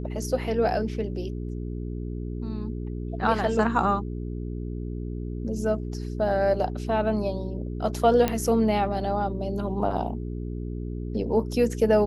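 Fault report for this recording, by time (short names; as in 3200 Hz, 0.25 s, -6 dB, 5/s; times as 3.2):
hum 60 Hz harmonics 7 -32 dBFS
8.28 pop -10 dBFS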